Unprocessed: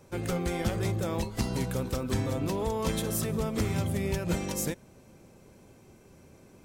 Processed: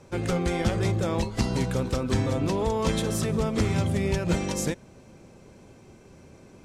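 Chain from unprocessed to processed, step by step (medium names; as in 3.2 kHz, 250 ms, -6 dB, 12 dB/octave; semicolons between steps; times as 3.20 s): low-pass 7.8 kHz 12 dB/octave; trim +4.5 dB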